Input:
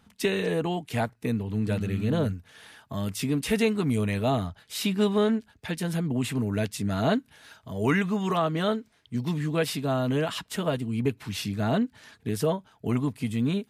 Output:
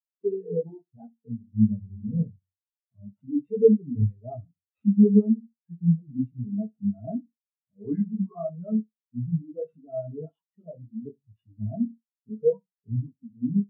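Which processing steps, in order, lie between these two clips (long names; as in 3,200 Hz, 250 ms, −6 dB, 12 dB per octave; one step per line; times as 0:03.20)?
chorus effect 0.7 Hz, delay 17 ms, depth 7.7 ms
in parallel at −11 dB: log-companded quantiser 2 bits
on the sum: hum removal 45.68 Hz, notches 8
sample-rate reduction 6,400 Hz, jitter 0%
flutter between parallel walls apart 11.1 metres, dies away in 0.45 s
every bin expanded away from the loudest bin 4 to 1
level +6.5 dB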